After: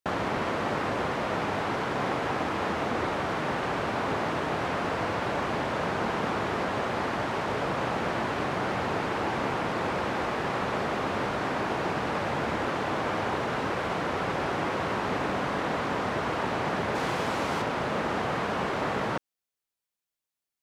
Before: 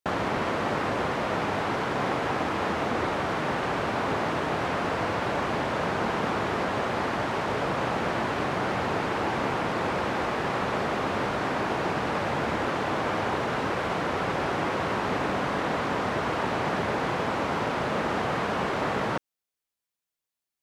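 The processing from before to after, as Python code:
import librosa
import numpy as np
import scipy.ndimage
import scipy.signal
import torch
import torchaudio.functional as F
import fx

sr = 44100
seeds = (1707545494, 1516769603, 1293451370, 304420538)

y = fx.high_shelf(x, sr, hz=4100.0, db=8.0, at=(16.95, 17.62))
y = y * 10.0 ** (-1.5 / 20.0)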